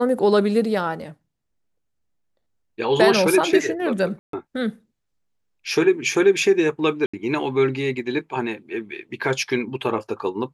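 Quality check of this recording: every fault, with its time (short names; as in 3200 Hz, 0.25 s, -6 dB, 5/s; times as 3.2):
4.19–4.33 gap 0.143 s
7.06–7.13 gap 75 ms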